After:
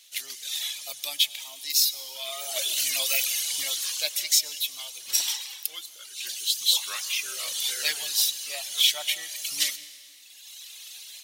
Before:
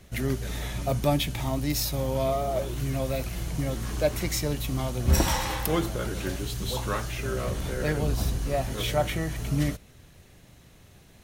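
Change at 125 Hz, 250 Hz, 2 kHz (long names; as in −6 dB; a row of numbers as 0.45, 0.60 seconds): below −40 dB, below −30 dB, +1.5 dB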